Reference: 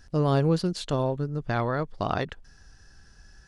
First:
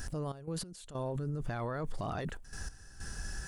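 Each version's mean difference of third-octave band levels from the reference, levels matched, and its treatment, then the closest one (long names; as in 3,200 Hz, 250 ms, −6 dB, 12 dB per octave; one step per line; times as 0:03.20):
10.0 dB: high shelf with overshoot 6,600 Hz +9 dB, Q 1.5
brickwall limiter −41.5 dBFS, peak gain reduction 28.5 dB
gate pattern "xx.x..xxxxxxx" 95 BPM −12 dB
level +12 dB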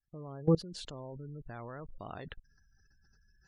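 7.5 dB: fade in at the beginning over 0.51 s
gate on every frequency bin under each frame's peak −25 dB strong
output level in coarse steps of 22 dB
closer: second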